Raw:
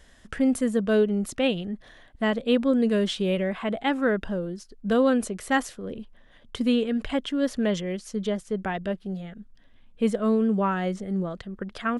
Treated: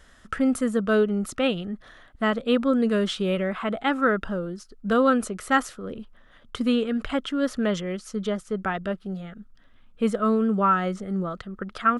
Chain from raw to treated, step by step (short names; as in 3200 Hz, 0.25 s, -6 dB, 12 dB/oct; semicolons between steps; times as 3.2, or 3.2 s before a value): bell 1300 Hz +12.5 dB 0.33 oct